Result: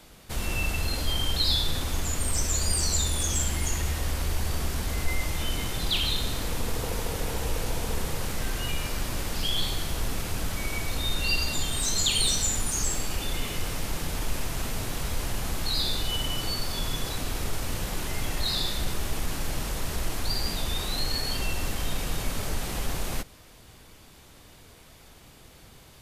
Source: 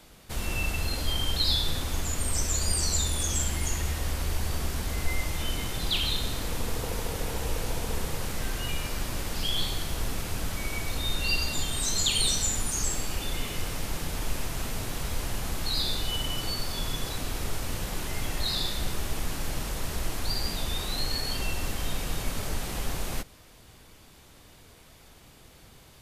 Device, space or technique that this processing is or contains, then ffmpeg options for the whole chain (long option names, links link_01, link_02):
parallel distortion: -filter_complex "[0:a]asplit=2[link_01][link_02];[link_02]asoftclip=type=hard:threshold=-26.5dB,volume=-13.5dB[link_03];[link_01][link_03]amix=inputs=2:normalize=0"